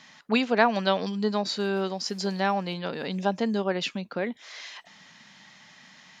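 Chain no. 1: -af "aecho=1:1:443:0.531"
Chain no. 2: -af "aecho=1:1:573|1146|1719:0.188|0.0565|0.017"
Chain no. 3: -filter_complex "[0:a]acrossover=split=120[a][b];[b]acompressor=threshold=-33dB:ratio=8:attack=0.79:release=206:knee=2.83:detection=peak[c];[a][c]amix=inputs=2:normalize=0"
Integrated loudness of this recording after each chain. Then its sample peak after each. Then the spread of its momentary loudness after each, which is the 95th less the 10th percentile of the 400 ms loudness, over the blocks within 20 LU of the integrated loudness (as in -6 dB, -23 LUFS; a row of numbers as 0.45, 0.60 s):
-26.5, -27.0, -38.5 LUFS; -6.5, -6.5, -26.5 dBFS; 14, 16, 13 LU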